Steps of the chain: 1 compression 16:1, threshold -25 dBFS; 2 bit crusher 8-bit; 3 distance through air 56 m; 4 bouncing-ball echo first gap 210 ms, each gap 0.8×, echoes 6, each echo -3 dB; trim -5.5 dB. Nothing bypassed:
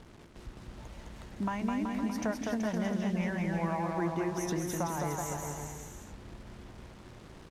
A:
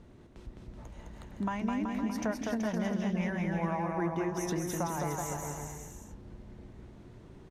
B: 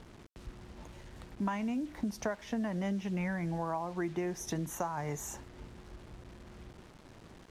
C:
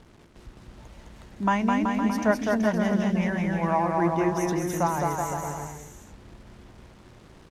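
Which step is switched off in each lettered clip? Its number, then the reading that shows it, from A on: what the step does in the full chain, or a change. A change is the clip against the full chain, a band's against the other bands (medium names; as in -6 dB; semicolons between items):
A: 2, distortion -21 dB; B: 4, echo-to-direct 0.0 dB to none; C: 1, mean gain reduction 3.5 dB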